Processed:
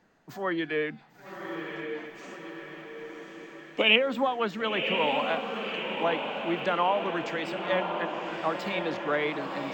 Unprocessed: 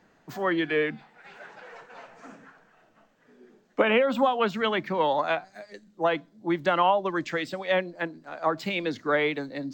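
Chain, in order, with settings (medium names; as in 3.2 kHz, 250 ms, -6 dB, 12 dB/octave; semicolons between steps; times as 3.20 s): 2.15–3.96 s: resonant high shelf 2.1 kHz +9.5 dB, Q 3; on a send: echo that smears into a reverb 1076 ms, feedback 61%, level -5.5 dB; on the sum: trim -4 dB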